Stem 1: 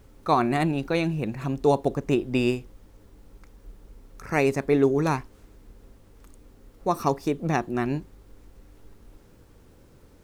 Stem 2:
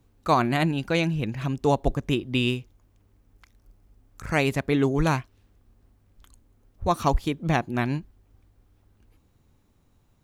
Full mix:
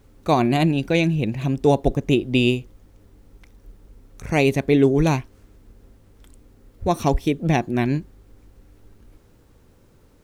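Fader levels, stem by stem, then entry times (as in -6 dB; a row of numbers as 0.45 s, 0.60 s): -1.5 dB, +1.0 dB; 0.00 s, 0.00 s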